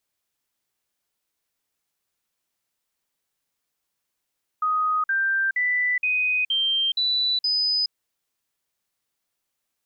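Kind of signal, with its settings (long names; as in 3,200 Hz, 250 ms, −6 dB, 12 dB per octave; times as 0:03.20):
stepped sweep 1,250 Hz up, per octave 3, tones 7, 0.42 s, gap 0.05 s −19.5 dBFS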